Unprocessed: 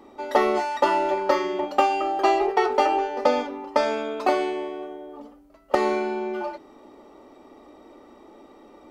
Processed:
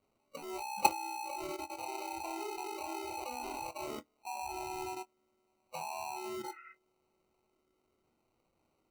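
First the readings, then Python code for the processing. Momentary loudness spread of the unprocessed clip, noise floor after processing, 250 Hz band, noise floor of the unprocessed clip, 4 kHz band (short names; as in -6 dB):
12 LU, -78 dBFS, -17.5 dB, -51 dBFS, -10.5 dB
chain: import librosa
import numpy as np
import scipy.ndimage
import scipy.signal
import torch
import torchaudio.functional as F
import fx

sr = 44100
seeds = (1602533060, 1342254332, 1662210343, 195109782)

p1 = fx.freq_compress(x, sr, knee_hz=3800.0, ratio=1.5)
p2 = fx.stiff_resonator(p1, sr, f0_hz=76.0, decay_s=0.26, stiffness=0.008)
p3 = fx.quant_dither(p2, sr, seeds[0], bits=6, dither='triangular')
p4 = p2 + F.gain(torch.from_numpy(p3), -9.5).numpy()
p5 = scipy.signal.sosfilt(scipy.signal.butter(16, 7000.0, 'lowpass', fs=sr, output='sos'), p4)
p6 = p5 + fx.echo_swell(p5, sr, ms=100, loudest=5, wet_db=-17.5, dry=0)
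p7 = fx.rotary(p6, sr, hz=0.8)
p8 = fx.high_shelf(p7, sr, hz=3400.0, db=3.5)
p9 = fx.level_steps(p8, sr, step_db=20)
p10 = fx.sample_hold(p9, sr, seeds[1], rate_hz=1700.0, jitter_pct=0)
p11 = fx.spec_repair(p10, sr, seeds[2], start_s=6.46, length_s=0.25, low_hz=1100.0, high_hz=3000.0, source='before')
p12 = fx.doubler(p11, sr, ms=24.0, db=-12.5)
y = fx.noise_reduce_blind(p12, sr, reduce_db=18)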